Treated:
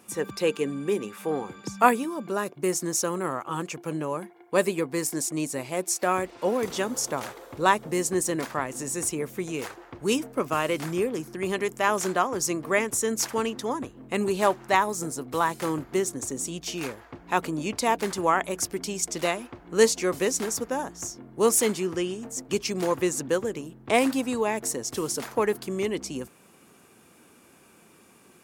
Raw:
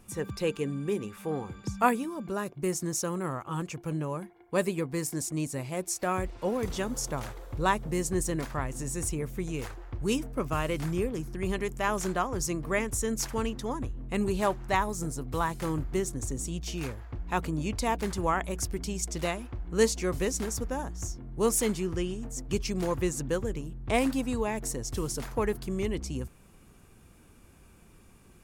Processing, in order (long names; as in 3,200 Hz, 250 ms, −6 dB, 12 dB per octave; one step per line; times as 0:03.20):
high-pass filter 250 Hz 12 dB per octave
level +5.5 dB